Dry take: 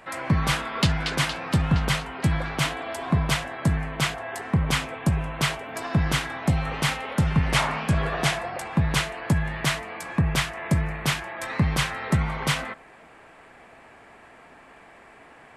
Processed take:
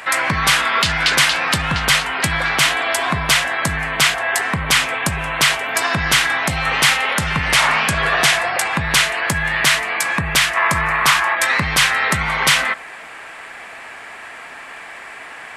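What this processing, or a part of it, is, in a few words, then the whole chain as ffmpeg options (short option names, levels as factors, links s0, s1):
mastering chain: -filter_complex "[0:a]asettb=1/sr,asplit=3[s0][s1][s2];[s0]atrim=end=10.564[s3];[s1]atrim=start=10.56:end=11.35,asetpts=PTS-STARTPTS,afade=t=in:d=0.004:c=qsin,afade=t=out:st=0.786:d=0.004:c=qsin,equalizer=f=1100:t=o:w=0.78:g=11.5[s4];[s2]atrim=start=11.346[s5];[s3][s4]acrossfade=d=0.004:c1=hsin:c2=qsin[s6];[s6][s5]acrossfade=d=0.004:c1=qsin:c2=hsin,equalizer=f=1800:t=o:w=0.77:g=2,acompressor=threshold=0.0398:ratio=1.5,asoftclip=type=tanh:threshold=0.2,tiltshelf=f=730:g=-8.5,alimiter=level_in=4.22:limit=0.891:release=50:level=0:latency=1,volume=0.794"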